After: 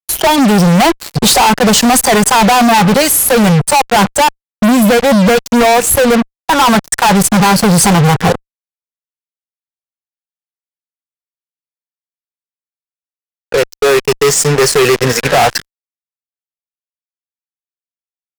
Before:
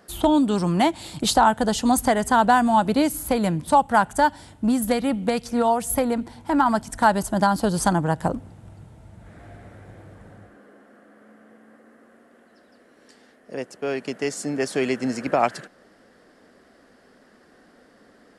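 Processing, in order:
notch filter 2,200 Hz, Q 12
hard clipping −7.5 dBFS, distortion −26 dB
noise reduction from a noise print of the clip's start 18 dB
0:03.92–0:06.00: thirty-one-band graphic EQ 125 Hz +9 dB, 200 Hz +7 dB, 5,000 Hz −12 dB, 10,000 Hz −10 dB
fuzz pedal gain 41 dB, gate −38 dBFS
level +6.5 dB

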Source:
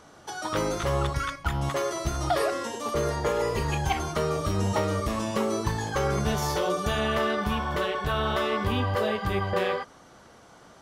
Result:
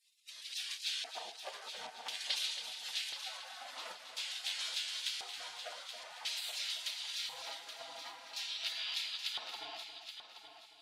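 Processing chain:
gate on every frequency bin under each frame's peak −30 dB weak
auto-filter band-pass square 0.48 Hz 730–3,600 Hz
echo machine with several playback heads 275 ms, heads first and third, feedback 41%, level −10 dB
level +13.5 dB

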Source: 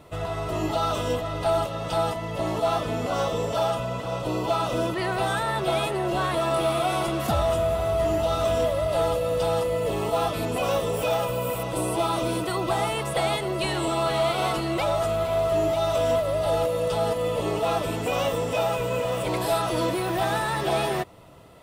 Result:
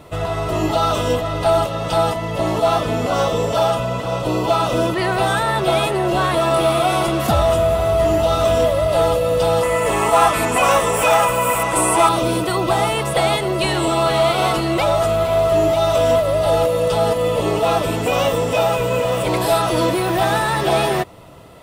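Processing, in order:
0:09.63–0:12.09: octave-band graphic EQ 125/500/1,000/2,000/4,000/8,000 Hz −5/−3/+7/+9/−5/+10 dB
level +7.5 dB

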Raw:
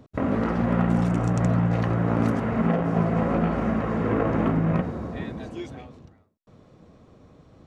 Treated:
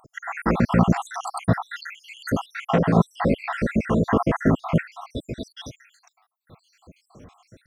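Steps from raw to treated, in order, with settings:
time-frequency cells dropped at random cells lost 76%
high-shelf EQ 2,300 Hz +11.5 dB
level +6 dB

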